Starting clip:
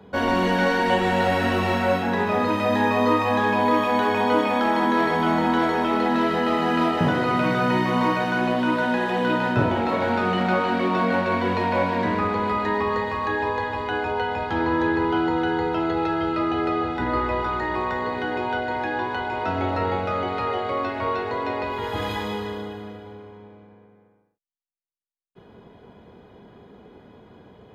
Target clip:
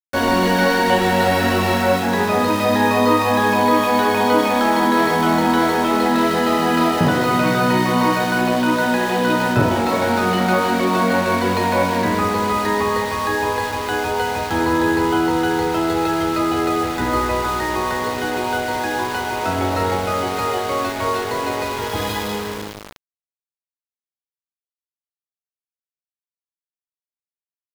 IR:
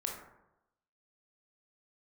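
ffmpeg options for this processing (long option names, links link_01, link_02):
-af "aexciter=amount=1.3:drive=7.8:freq=4100,aeval=exprs='val(0)*gte(abs(val(0)),0.0316)':channel_layout=same,volume=4.5dB"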